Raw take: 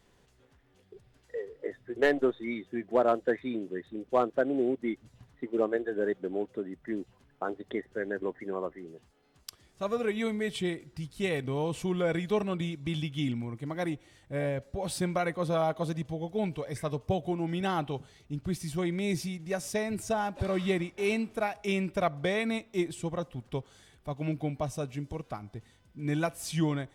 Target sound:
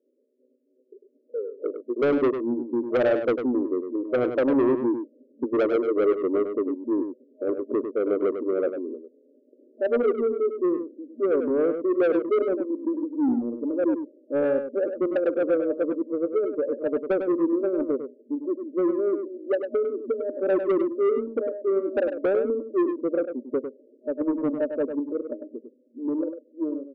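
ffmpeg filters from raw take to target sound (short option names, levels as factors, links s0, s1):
-af "afftfilt=real='re*between(b*sr/4096,230,620)':imag='im*between(b*sr/4096,230,620)':win_size=4096:overlap=0.75,dynaudnorm=f=360:g=9:m=4.47,aresample=16000,asoftclip=type=tanh:threshold=0.133,aresample=44100,aecho=1:1:100:0.398"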